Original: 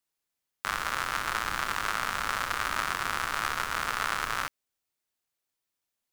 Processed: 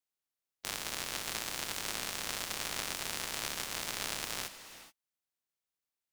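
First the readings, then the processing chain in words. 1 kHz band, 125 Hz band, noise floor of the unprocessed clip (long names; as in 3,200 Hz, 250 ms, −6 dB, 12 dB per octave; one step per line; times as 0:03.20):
−14.0 dB, −6.0 dB, −85 dBFS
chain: ceiling on every frequency bin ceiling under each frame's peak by 23 dB
reverb whose tail is shaped and stops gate 450 ms rising, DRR 11.5 dB
level −7.5 dB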